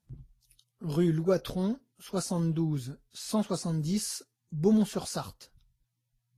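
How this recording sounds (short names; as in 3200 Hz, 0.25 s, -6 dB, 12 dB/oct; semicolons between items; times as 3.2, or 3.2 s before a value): Vorbis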